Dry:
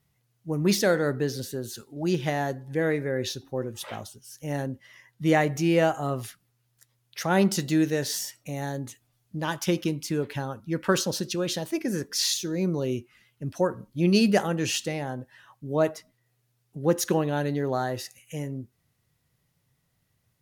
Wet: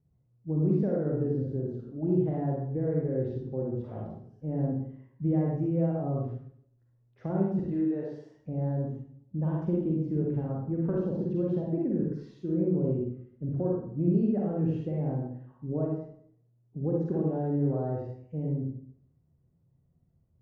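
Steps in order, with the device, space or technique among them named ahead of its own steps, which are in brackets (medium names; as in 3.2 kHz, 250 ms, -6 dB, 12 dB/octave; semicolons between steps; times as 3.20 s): 7.59–8.35 s: frequency weighting A; television next door (compression 4:1, threshold -26 dBFS, peak gain reduction 9 dB; low-pass 410 Hz 12 dB/octave; reverberation RT60 0.60 s, pre-delay 38 ms, DRR -3.5 dB)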